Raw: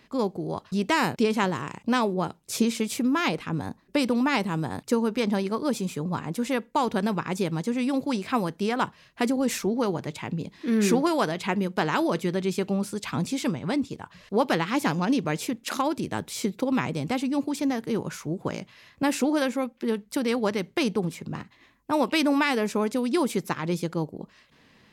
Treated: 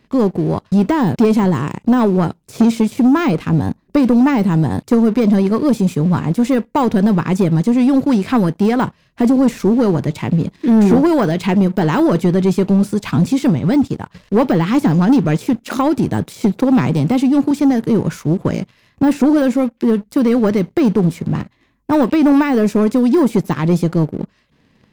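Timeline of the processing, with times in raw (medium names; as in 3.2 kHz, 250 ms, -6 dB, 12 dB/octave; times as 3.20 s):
16.25–17.51 s: high-pass 96 Hz 24 dB/octave
whole clip: de-esser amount 80%; bass shelf 430 Hz +10.5 dB; waveshaping leveller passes 2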